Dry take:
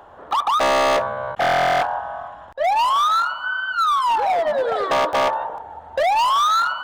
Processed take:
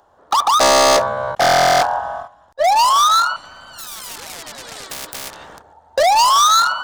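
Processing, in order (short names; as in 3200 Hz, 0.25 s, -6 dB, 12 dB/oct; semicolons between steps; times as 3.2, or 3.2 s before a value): gate -30 dBFS, range -15 dB; resonant high shelf 3800 Hz +9 dB, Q 1.5; 3.36–5.73 spectral compressor 4:1; gain +5 dB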